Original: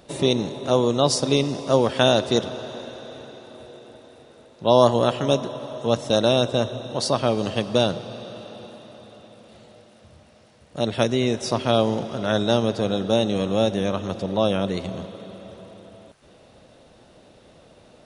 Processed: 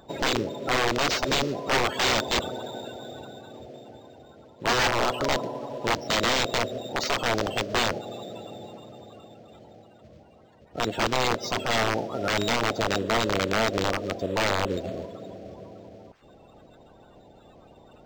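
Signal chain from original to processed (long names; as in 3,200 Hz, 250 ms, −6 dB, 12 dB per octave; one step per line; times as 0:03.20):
spectral magnitudes quantised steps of 30 dB
wrap-around overflow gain 15 dB
dynamic equaliser 130 Hz, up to −5 dB, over −43 dBFS, Q 0.8
linearly interpolated sample-rate reduction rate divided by 4×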